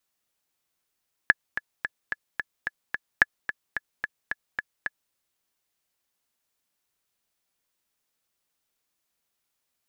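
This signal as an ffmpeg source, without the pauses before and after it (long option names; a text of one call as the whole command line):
ffmpeg -f lavfi -i "aevalsrc='pow(10,(-2.5-12*gte(mod(t,7*60/219),60/219))/20)*sin(2*PI*1710*mod(t,60/219))*exp(-6.91*mod(t,60/219)/0.03)':duration=3.83:sample_rate=44100" out.wav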